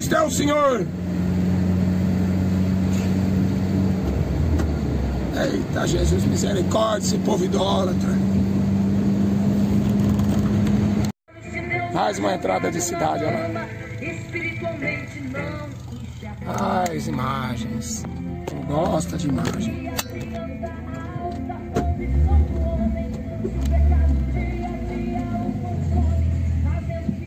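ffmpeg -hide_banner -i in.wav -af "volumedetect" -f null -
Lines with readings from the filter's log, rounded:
mean_volume: -21.6 dB
max_volume: -7.3 dB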